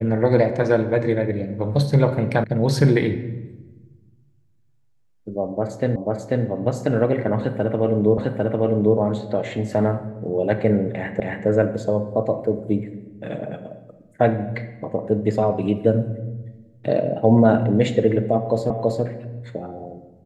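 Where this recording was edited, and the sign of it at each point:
2.44 sound cut off
5.96 repeat of the last 0.49 s
8.18 repeat of the last 0.8 s
11.2 repeat of the last 0.27 s
18.7 repeat of the last 0.33 s

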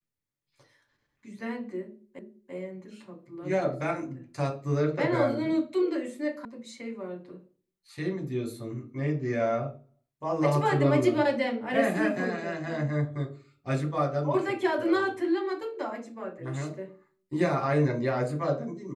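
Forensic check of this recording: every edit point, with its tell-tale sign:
2.19 repeat of the last 0.34 s
6.45 sound cut off

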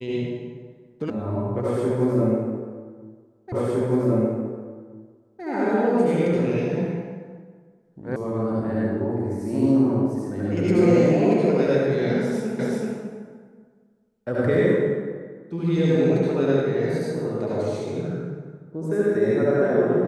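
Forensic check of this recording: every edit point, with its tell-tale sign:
1.1 sound cut off
3.52 repeat of the last 1.91 s
8.16 sound cut off
12.59 repeat of the last 0.38 s

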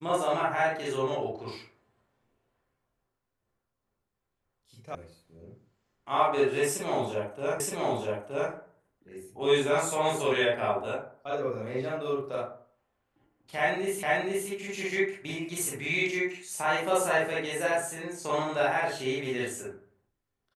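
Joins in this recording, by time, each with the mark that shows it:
4.95 sound cut off
7.6 repeat of the last 0.92 s
14.03 repeat of the last 0.47 s

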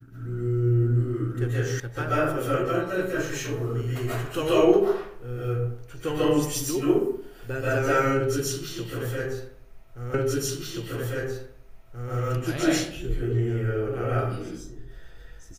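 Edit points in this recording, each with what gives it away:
1.8 sound cut off
10.14 repeat of the last 1.98 s

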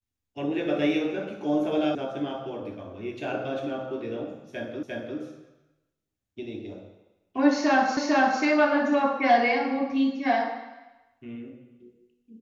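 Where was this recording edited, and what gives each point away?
1.95 sound cut off
4.83 repeat of the last 0.35 s
7.97 repeat of the last 0.45 s

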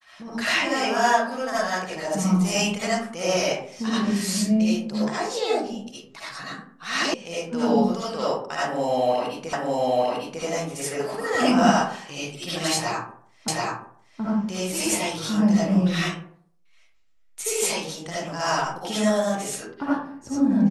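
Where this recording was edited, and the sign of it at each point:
7.14 sound cut off
9.53 repeat of the last 0.9 s
13.48 repeat of the last 0.73 s

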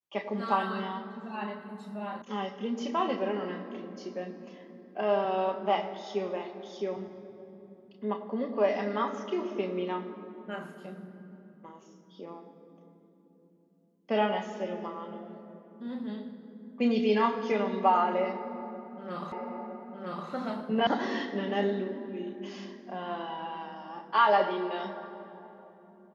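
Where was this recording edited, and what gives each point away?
2.22 sound cut off
19.32 repeat of the last 0.96 s
20.87 sound cut off

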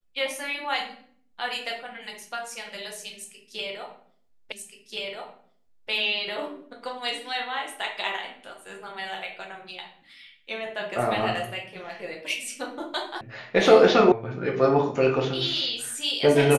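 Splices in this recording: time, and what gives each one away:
4.52 repeat of the last 1.38 s
13.21 sound cut off
14.12 sound cut off

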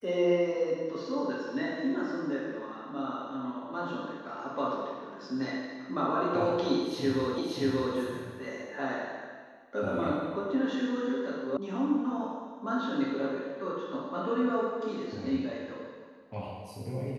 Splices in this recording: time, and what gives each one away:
7.38 repeat of the last 0.58 s
11.57 sound cut off

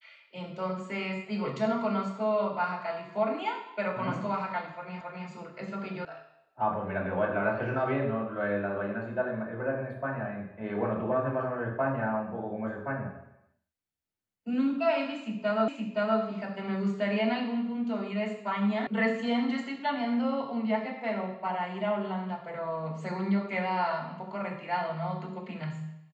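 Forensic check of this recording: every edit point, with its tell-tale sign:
5.01 repeat of the last 0.27 s
6.05 sound cut off
15.68 repeat of the last 0.52 s
18.87 sound cut off

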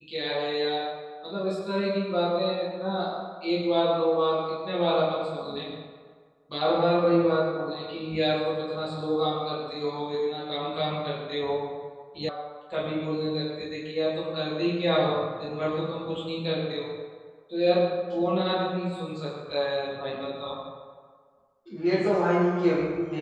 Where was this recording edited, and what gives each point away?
12.29 sound cut off

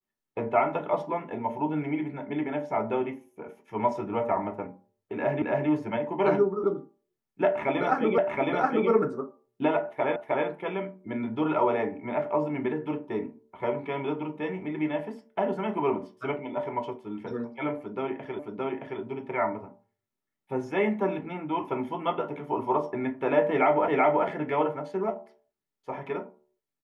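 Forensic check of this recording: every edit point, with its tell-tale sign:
5.42 repeat of the last 0.27 s
8.18 repeat of the last 0.72 s
10.16 repeat of the last 0.31 s
18.39 repeat of the last 0.62 s
23.88 repeat of the last 0.38 s

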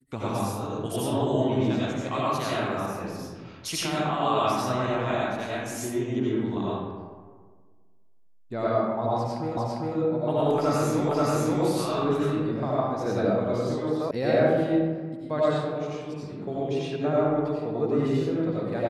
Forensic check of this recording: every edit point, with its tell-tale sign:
9.57 repeat of the last 0.4 s
11.09 repeat of the last 0.53 s
14.11 sound cut off

